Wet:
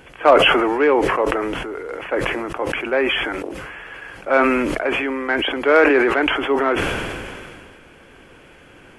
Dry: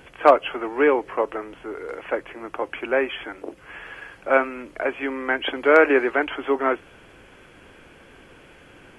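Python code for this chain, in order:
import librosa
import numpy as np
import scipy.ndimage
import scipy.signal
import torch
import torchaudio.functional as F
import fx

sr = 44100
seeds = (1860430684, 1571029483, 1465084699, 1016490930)

p1 = 10.0 ** (-15.0 / 20.0) * np.tanh(x / 10.0 ** (-15.0 / 20.0))
p2 = x + F.gain(torch.from_numpy(p1), -7.0).numpy()
p3 = fx.sustainer(p2, sr, db_per_s=26.0)
y = F.gain(torch.from_numpy(p3), -1.0).numpy()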